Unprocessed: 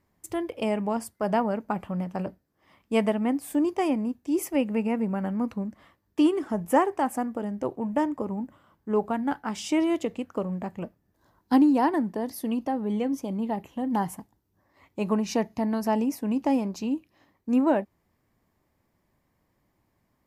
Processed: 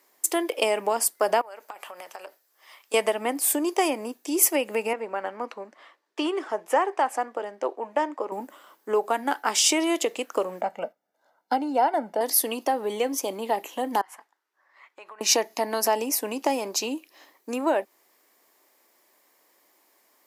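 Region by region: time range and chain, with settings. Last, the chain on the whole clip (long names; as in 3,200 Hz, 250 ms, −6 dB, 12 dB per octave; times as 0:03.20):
0:01.41–0:02.94: Bessel high-pass filter 780 Hz + downward compressor 20 to 1, threshold −43 dBFS
0:04.93–0:08.32: high-pass filter 600 Hz 6 dB per octave + head-to-tape spacing loss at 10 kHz 20 dB
0:10.61–0:12.21: noise gate −53 dBFS, range −8 dB + low-pass filter 1,200 Hz 6 dB per octave + comb filter 1.4 ms, depth 73%
0:14.01–0:15.21: resonant band-pass 1,500 Hz, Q 1.7 + downward compressor, threshold −50 dBFS
whole clip: downward compressor 4 to 1, threshold −26 dBFS; high-pass filter 360 Hz 24 dB per octave; high-shelf EQ 3,200 Hz +12 dB; level +8 dB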